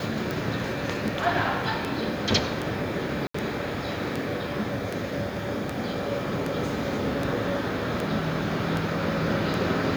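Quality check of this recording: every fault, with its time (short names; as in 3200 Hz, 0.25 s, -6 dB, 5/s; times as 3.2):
tick 78 rpm
3.27–3.34 gap 74 ms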